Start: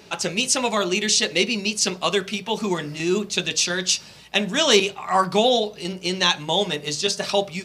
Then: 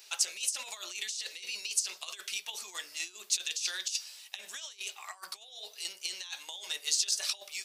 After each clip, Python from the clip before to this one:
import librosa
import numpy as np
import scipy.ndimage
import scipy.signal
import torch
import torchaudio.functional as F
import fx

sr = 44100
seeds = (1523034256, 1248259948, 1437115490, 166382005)

y = fx.over_compress(x, sr, threshold_db=-25.0, ratio=-0.5)
y = scipy.signal.sosfilt(scipy.signal.butter(2, 470.0, 'highpass', fs=sr, output='sos'), y)
y = np.diff(y, prepend=0.0)
y = y * 10.0 ** (-2.0 / 20.0)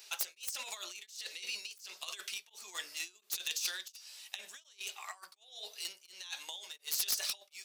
y = fx.self_delay(x, sr, depth_ms=0.11)
y = y * np.abs(np.cos(np.pi * 1.4 * np.arange(len(y)) / sr))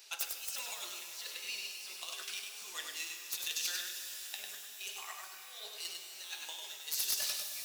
y = x + 10.0 ** (-4.5 / 20.0) * np.pad(x, (int(99 * sr / 1000.0), 0))[:len(x)]
y = fx.rev_shimmer(y, sr, seeds[0], rt60_s=3.7, semitones=12, shimmer_db=-2, drr_db=5.5)
y = y * 10.0 ** (-2.0 / 20.0)